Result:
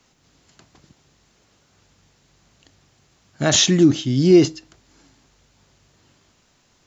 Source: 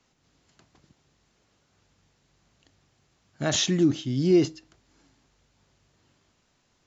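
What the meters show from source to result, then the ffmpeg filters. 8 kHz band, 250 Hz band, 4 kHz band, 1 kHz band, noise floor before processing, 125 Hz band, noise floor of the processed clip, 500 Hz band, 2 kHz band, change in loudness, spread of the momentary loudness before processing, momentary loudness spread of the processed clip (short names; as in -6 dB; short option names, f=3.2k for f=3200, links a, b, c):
n/a, +7.5 dB, +9.0 dB, +7.5 dB, -70 dBFS, +7.5 dB, -61 dBFS, +7.5 dB, +8.0 dB, +8.0 dB, 8 LU, 9 LU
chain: -af "highshelf=f=5.1k:g=4,volume=7.5dB"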